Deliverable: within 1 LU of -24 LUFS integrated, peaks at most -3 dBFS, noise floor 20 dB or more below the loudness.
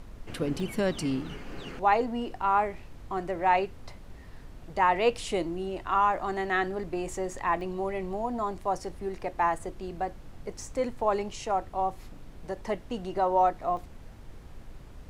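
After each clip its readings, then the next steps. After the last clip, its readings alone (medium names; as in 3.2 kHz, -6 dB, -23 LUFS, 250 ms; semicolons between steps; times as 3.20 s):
dropouts 3; longest dropout 1.1 ms; noise floor -47 dBFS; noise floor target -50 dBFS; loudness -29.5 LUFS; peak level -11.5 dBFS; loudness target -24.0 LUFS
-> interpolate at 0.60/7.61/13.77 s, 1.1 ms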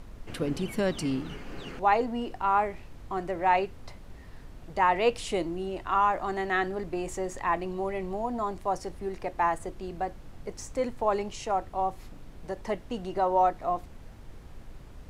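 dropouts 0; noise floor -47 dBFS; noise floor target -50 dBFS
-> noise print and reduce 6 dB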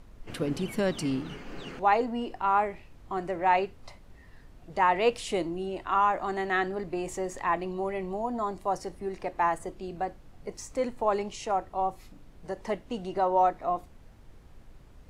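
noise floor -53 dBFS; loudness -29.5 LUFS; peak level -11.0 dBFS; loudness target -24.0 LUFS
-> trim +5.5 dB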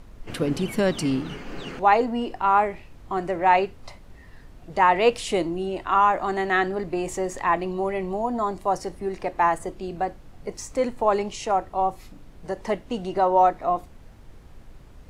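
loudness -24.0 LUFS; peak level -5.5 dBFS; noise floor -47 dBFS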